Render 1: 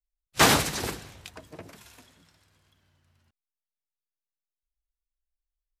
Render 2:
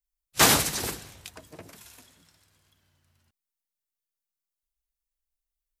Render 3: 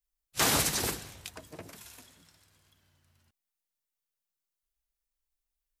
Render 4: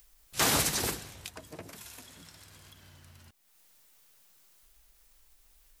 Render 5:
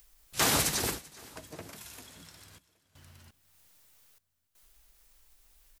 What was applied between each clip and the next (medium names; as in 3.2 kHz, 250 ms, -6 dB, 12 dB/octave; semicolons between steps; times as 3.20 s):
treble shelf 5.9 kHz +9.5 dB; trim -2 dB
peak limiter -15.5 dBFS, peak gain reduction 9.5 dB
upward compressor, threshold -41 dBFS
trance gate "xxxxxxxx...xx" 122 bpm -24 dB; feedback delay 388 ms, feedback 55%, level -22 dB